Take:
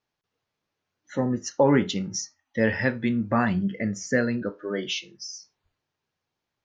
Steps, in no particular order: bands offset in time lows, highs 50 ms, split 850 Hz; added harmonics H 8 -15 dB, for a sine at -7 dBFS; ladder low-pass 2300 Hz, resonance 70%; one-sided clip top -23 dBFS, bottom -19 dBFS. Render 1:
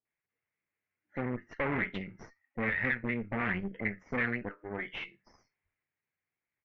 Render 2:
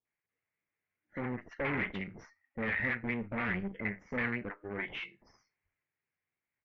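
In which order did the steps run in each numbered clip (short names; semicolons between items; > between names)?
bands offset in time > one-sided clip > added harmonics > ladder low-pass; added harmonics > bands offset in time > one-sided clip > ladder low-pass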